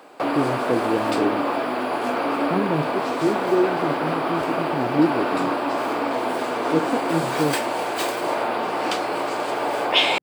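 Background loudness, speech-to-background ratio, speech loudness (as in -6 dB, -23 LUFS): -24.0 LUFS, -1.5 dB, -25.5 LUFS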